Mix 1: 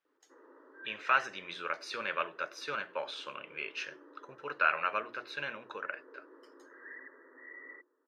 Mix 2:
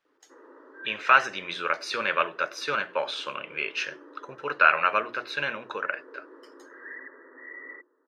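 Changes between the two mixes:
speech +9.0 dB; background +7.0 dB

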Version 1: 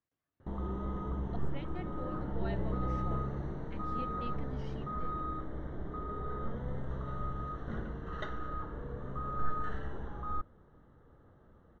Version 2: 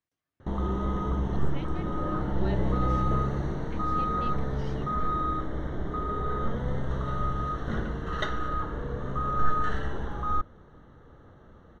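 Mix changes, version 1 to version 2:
background +8.0 dB; master: add treble shelf 3.1 kHz +11 dB

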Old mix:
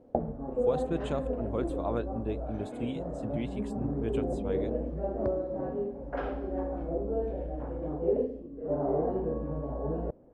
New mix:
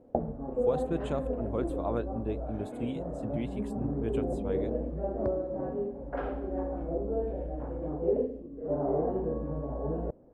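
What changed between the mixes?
speech: remove distance through air 89 m; master: add low-pass 2.3 kHz 6 dB/octave

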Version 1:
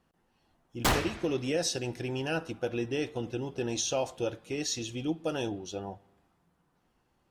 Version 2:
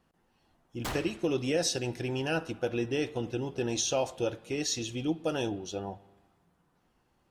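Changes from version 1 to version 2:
speech: send +6.0 dB; background -10.0 dB

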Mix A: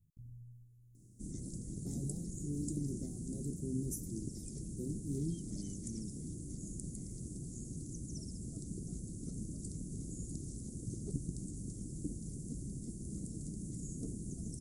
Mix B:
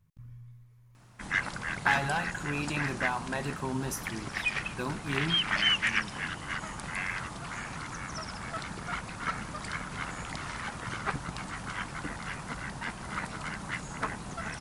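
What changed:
speech +3.5 dB; master: remove elliptic band-stop 350–7000 Hz, stop band 50 dB

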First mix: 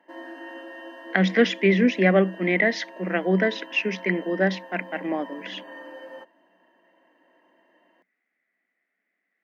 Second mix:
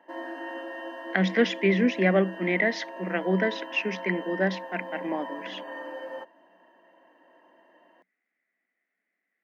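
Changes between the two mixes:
speech -3.5 dB; background: add peaking EQ 800 Hz +5 dB 1.9 oct

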